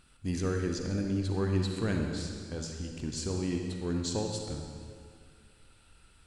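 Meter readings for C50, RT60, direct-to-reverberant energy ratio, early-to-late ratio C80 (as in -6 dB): 3.0 dB, 2.1 s, 2.0 dB, 4.0 dB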